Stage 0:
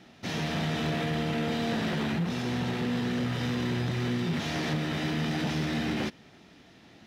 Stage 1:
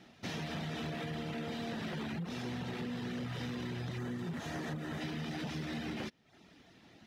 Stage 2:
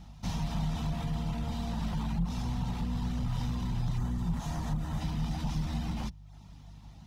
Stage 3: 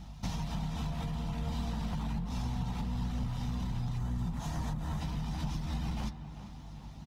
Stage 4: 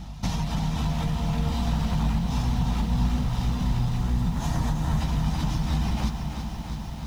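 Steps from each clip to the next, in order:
spectral gain 3.98–5.01, 2000–6000 Hz -6 dB; reverb removal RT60 0.56 s; compressor, threshold -32 dBFS, peak gain reduction 6.5 dB; gain -4 dB
octaver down 2 oct, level -1 dB; EQ curve 190 Hz 0 dB, 380 Hz -18 dB, 620 Hz -10 dB, 930 Hz +1 dB, 1700 Hz -15 dB, 7000 Hz -2 dB; buzz 50 Hz, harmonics 3, -58 dBFS; gain +7.5 dB
compressor, threshold -34 dBFS, peak gain reduction 9 dB; doubler 15 ms -12 dB; tape echo 0.394 s, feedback 69%, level -9.5 dB, low-pass 2100 Hz; gain +2.5 dB
lo-fi delay 0.331 s, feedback 80%, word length 10-bit, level -8.5 dB; gain +8.5 dB

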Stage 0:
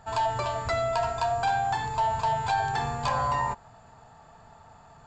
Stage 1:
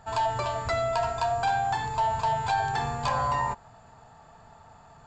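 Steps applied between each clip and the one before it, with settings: nothing audible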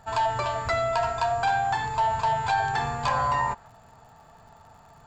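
dynamic EQ 1700 Hz, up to +4 dB, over -43 dBFS, Q 0.76; crackle 72/s -49 dBFS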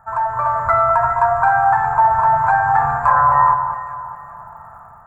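EQ curve 160 Hz 0 dB, 350 Hz -12 dB, 590 Hz 0 dB, 1300 Hz +12 dB, 1900 Hz -1 dB, 3100 Hz -27 dB, 5400 Hz -26 dB, 10000 Hz -1 dB; AGC gain up to 8 dB; echo with dull and thin repeats by turns 0.205 s, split 1300 Hz, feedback 57%, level -6 dB; gain -1.5 dB

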